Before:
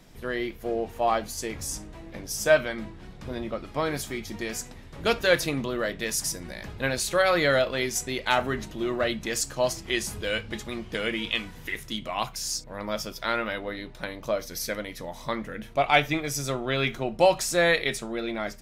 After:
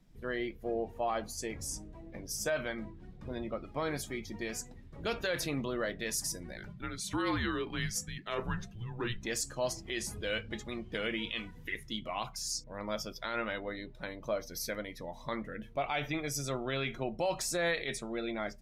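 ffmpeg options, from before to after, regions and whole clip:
-filter_complex "[0:a]asettb=1/sr,asplit=3[s0][s1][s2];[s0]atrim=end=6.574[s3];[s1]atrim=start=6.57:end=9.22,asetpts=PTS-STARTPTS,afade=t=in:d=0.004:c=qsin,afade=t=out:st=2.646:d=0.004:c=qsin,afreqshift=-230,tremolo=f=1.5:d=0.59[s4];[s2]atrim=start=9.216[s5];[s3][s4]acrossfade=d=0.004:c1=hsin:c2=qsin[s6];[s6][s5]acrossfade=d=0.004:c1=qsin:c2=hsin,afftdn=nr=13:nf=-44,alimiter=limit=0.126:level=0:latency=1:release=35,volume=0.531"

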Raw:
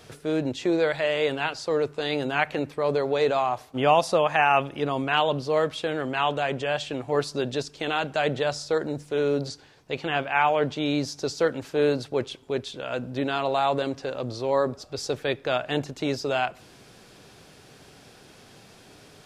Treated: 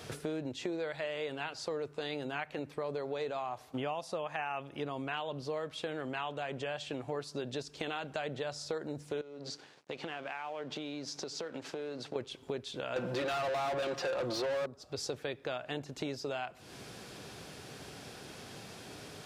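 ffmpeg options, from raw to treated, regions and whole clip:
-filter_complex "[0:a]asettb=1/sr,asplit=3[s0][s1][s2];[s0]atrim=end=9.214[s3];[s1]atrim=start=9.21:end=12.16,asetpts=PTS-STARTPTS,afade=t=in:d=0.004:c=qsin,afade=t=out:st=2.946:d=0.004:c=qsin,acompressor=threshold=0.0158:ratio=10:attack=3.2:release=140:knee=1:detection=peak,aeval=exprs='sgn(val(0))*max(abs(val(0))-0.00119,0)':c=same,highpass=180,lowpass=7200[s4];[s2]atrim=start=12.156[s5];[s3][s4]acrossfade=d=0.004:c1=hsin:c2=qsin[s6];[s6][s5]acrossfade=d=0.004:c1=qsin:c2=hsin,asettb=1/sr,asplit=3[s7][s8][s9];[s7]atrim=end=12.964[s10];[s8]atrim=start=12.96:end=14.66,asetpts=PTS-STARTPTS,afade=t=in:d=0.004:c=qsin,afade=t=out:st=1.696:d=0.004:c=qsin,aecho=1:1:5.7:0.85,atrim=end_sample=74970,asplit=2[s11][s12];[s12]highpass=f=720:p=1,volume=31.6,asoftclip=type=tanh:threshold=0.376[s13];[s11][s13]amix=inputs=2:normalize=0,lowpass=f=2900:p=1,volume=0.501[s14];[s9]atrim=start=14.656[s15];[s10][s14]acrossfade=d=0.004:c1=hsin:c2=qsin[s16];[s16][s15]acrossfade=d=0.004:c1=qsin:c2=hsin,highpass=48,acompressor=threshold=0.0126:ratio=6,volume=1.33"

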